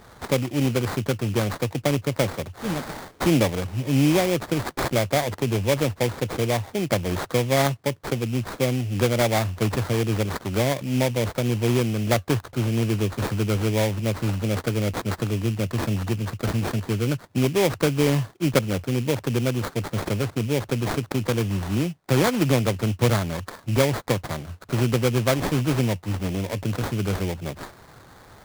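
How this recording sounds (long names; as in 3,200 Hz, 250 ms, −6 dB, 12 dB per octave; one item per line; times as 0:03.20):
aliases and images of a low sample rate 2,800 Hz, jitter 20%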